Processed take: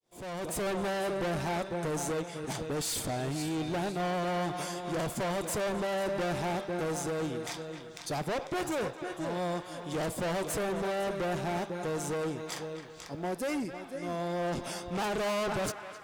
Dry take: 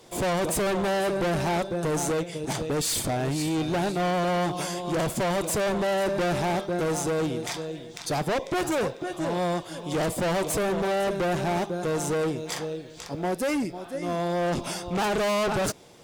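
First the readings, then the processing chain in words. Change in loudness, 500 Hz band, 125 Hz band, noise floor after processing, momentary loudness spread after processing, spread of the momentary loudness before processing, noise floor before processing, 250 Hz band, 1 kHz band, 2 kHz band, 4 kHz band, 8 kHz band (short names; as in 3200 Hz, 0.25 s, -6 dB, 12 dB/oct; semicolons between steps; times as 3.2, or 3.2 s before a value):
-6.5 dB, -6.5 dB, -6.5 dB, -46 dBFS, 6 LU, 6 LU, -43 dBFS, -6.5 dB, -6.0 dB, -6.0 dB, -6.5 dB, -6.5 dB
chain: opening faded in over 0.67 s; narrowing echo 0.262 s, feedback 62%, band-pass 1500 Hz, level -8.5 dB; gain -6.5 dB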